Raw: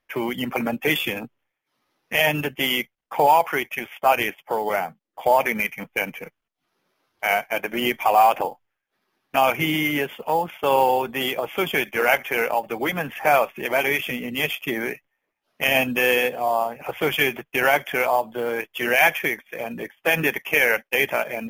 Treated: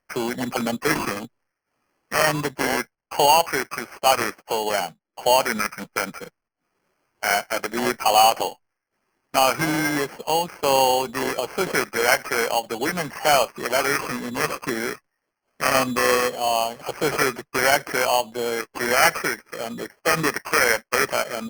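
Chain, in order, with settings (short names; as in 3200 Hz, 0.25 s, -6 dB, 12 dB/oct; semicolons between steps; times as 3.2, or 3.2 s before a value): sample-rate reducer 3700 Hz, jitter 0%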